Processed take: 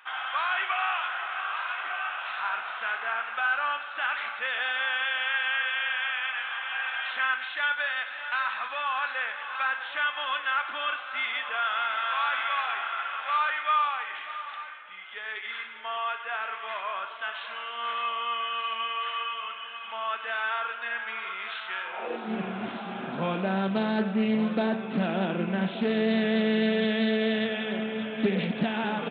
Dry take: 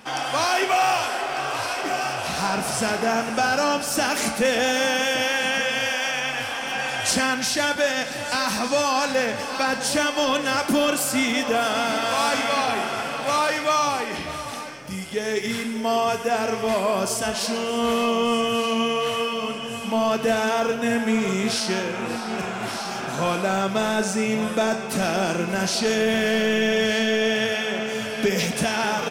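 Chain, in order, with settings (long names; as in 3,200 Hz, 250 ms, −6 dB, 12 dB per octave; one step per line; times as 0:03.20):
downsampling to 8,000 Hz
high-pass filter sweep 1,300 Hz → 200 Hz, 0:21.83–0:22.33
highs frequency-modulated by the lows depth 0.2 ms
level −7.5 dB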